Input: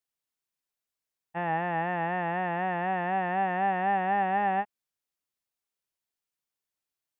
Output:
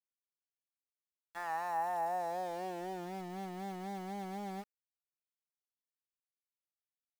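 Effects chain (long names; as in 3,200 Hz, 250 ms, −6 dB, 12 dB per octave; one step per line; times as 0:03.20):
band-pass filter sweep 3,000 Hz → 260 Hz, 0:00.42–0:03.24
centre clipping without the shift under −45.5 dBFS
level −2 dB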